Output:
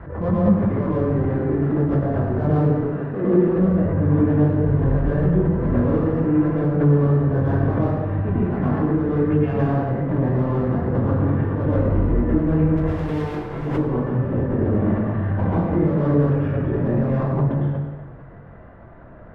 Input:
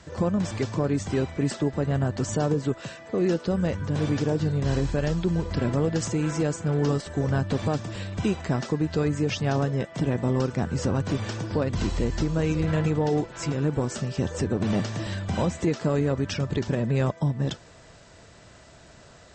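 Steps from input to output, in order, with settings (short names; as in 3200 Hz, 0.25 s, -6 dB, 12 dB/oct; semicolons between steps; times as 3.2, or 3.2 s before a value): LPF 1600 Hz 24 dB/oct; low shelf 63 Hz +9 dB; in parallel at -3.5 dB: soft clip -27 dBFS, distortion -8 dB; on the sum: chorus 2.8 Hz, delay 20 ms, depth 3.3 ms; 12.77–13.67 hard clip -30.5 dBFS, distortion -16 dB; reverb RT60 1.5 s, pre-delay 99 ms, DRR -8.5 dB; backwards sustainer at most 68 dB/s; gain -4.5 dB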